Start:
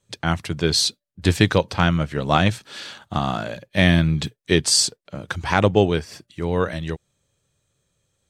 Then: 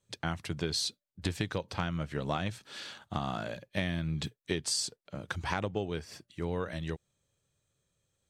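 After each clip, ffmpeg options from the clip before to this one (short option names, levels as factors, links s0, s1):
-af "acompressor=threshold=0.1:ratio=10,volume=0.398"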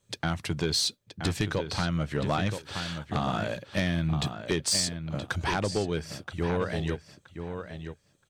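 -filter_complex "[0:a]asplit=2[s0][s1];[s1]adelay=974,lowpass=f=3900:p=1,volume=0.355,asplit=2[s2][s3];[s3]adelay=974,lowpass=f=3900:p=1,volume=0.18,asplit=2[s4][s5];[s5]adelay=974,lowpass=f=3900:p=1,volume=0.18[s6];[s0][s2][s4][s6]amix=inputs=4:normalize=0,aeval=exprs='0.211*sin(PI/2*2.24*val(0)/0.211)':c=same,volume=0.596"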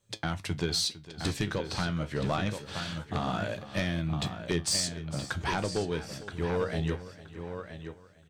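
-af "aecho=1:1:455|910|1365:0.15|0.0509|0.0173,flanger=delay=8.6:depth=8:regen=68:speed=0.26:shape=triangular,volume=1.26"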